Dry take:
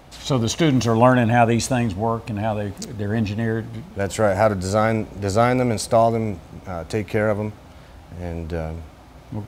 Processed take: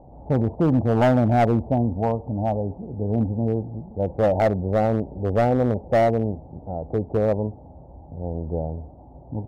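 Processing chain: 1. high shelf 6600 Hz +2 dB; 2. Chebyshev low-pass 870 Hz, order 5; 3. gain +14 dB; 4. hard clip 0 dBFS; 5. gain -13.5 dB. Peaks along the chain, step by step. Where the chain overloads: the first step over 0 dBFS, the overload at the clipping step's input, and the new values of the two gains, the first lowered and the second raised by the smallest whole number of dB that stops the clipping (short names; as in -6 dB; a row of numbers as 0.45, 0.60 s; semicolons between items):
-2.5, -4.0, +10.0, 0.0, -13.5 dBFS; step 3, 10.0 dB; step 3 +4 dB, step 5 -3.5 dB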